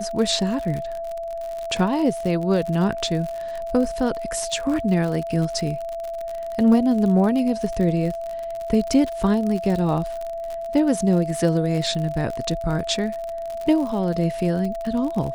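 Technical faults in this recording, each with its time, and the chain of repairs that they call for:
crackle 54 per s -27 dBFS
whine 670 Hz -27 dBFS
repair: de-click; band-stop 670 Hz, Q 30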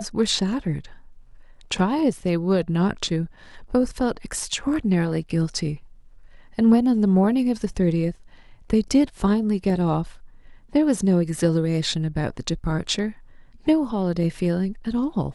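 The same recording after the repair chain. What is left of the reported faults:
nothing left

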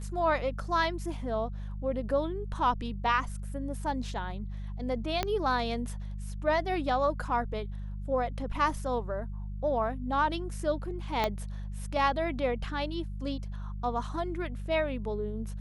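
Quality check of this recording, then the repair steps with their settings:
hum 50 Hz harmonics 4 -37 dBFS
5.23 s: pop -13 dBFS
11.24 s: pop -14 dBFS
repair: de-click; de-hum 50 Hz, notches 4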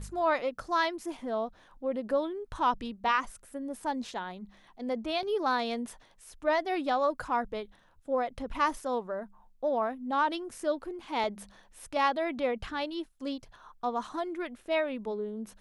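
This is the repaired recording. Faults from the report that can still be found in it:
5.23 s: pop
11.24 s: pop

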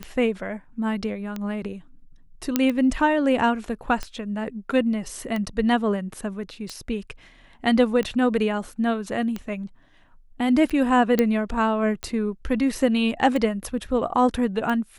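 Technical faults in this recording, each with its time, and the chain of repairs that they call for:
tick 45 rpm -16 dBFS
2.56 s: pop -5 dBFS
11.19 s: pop -7 dBFS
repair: de-click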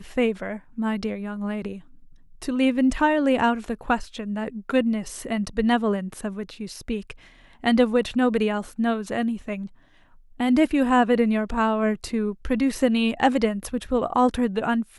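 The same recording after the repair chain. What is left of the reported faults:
nothing left

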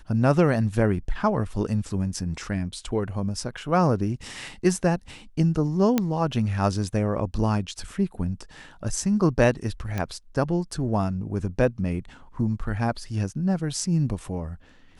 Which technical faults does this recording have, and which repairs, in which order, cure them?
5.98 s: pop -8 dBFS
9.98 s: pop -15 dBFS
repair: de-click

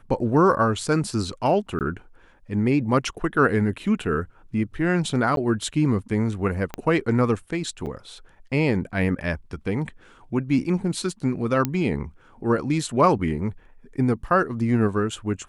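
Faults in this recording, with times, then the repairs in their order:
1.79–1.81 s: dropout 18 ms
5.36–5.37 s: dropout 12 ms
6.74 s: pop -14 dBFS
7.86–7.87 s: dropout 7.6 ms
11.65 s: pop -8 dBFS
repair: de-click; interpolate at 1.79 s, 18 ms; interpolate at 5.36 s, 12 ms; interpolate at 7.86 s, 7.6 ms

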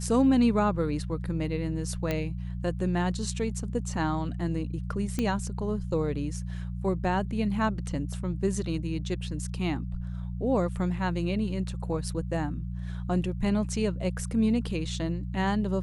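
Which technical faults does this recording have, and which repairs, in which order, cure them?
hum 60 Hz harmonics 3 -34 dBFS
2.11 s: pop -15 dBFS
5.19 s: pop -15 dBFS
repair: de-click; de-hum 60 Hz, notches 3

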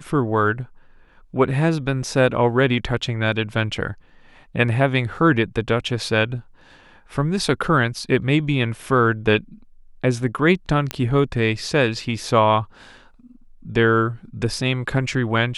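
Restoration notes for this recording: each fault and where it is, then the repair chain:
10.91 s: pop -8 dBFS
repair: de-click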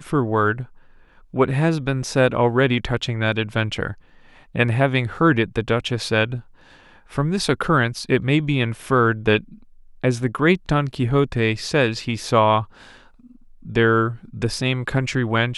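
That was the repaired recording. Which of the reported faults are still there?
nothing left

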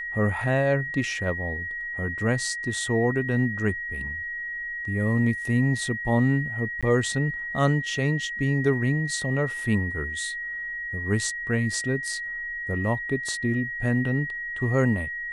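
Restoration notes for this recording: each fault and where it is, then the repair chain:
whine 1.9 kHz -30 dBFS
6.81–6.83 s: dropout 16 ms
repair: band-stop 1.9 kHz, Q 30; interpolate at 6.81 s, 16 ms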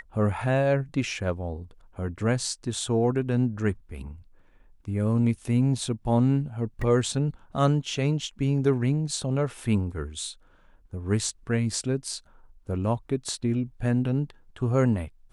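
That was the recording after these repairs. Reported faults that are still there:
nothing left

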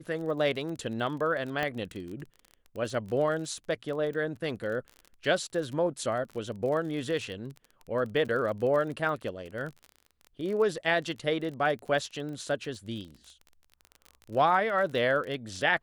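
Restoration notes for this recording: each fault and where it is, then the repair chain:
crackle 30 per s -36 dBFS
1.63 s: pop -17 dBFS
8.28–8.29 s: dropout 8.7 ms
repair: de-click; interpolate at 8.28 s, 8.7 ms

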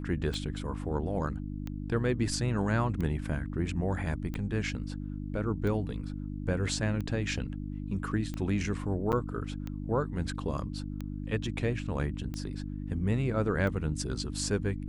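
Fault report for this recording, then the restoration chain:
hum 50 Hz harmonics 6 -37 dBFS
tick 45 rpm
9.12–9.13 s: dropout 8.2 ms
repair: de-click; de-hum 50 Hz, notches 6; interpolate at 9.12 s, 8.2 ms

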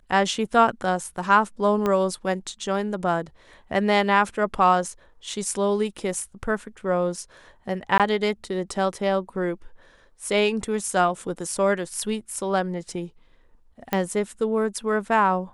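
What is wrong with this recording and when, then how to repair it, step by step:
1.86 s: pop -12 dBFS
7.98–8.00 s: dropout 17 ms
13.93 s: pop -10 dBFS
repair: de-click; interpolate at 7.98 s, 17 ms

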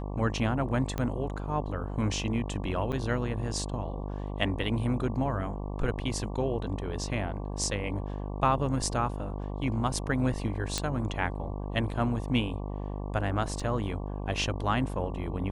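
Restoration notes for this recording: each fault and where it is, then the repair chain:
buzz 50 Hz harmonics 23 -35 dBFS
0.98 s: pop -18 dBFS
2.92–2.93 s: dropout 7.9 ms
10.78 s: pop -13 dBFS
13.60 s: dropout 3.4 ms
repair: de-click; de-hum 50 Hz, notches 23; interpolate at 2.92 s, 7.9 ms; interpolate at 13.60 s, 3.4 ms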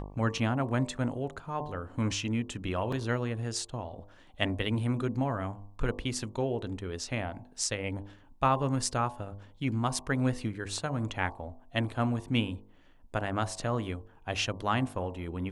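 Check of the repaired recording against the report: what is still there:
0.98 s: pop
10.78 s: pop

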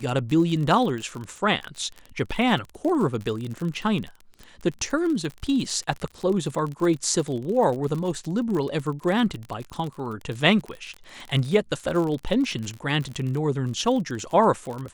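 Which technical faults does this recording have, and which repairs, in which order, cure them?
crackle 39 per s -29 dBFS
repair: de-click

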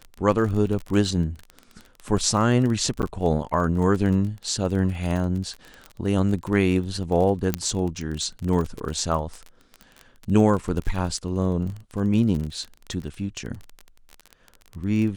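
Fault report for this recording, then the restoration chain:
crackle 28 per s -28 dBFS
3.02–3.03 s: dropout 9.6 ms
7.54 s: pop -7 dBFS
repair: de-click; interpolate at 3.02 s, 9.6 ms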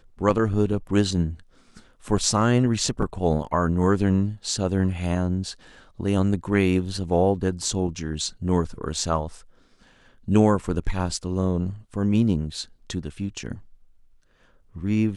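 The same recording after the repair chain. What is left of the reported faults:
nothing left

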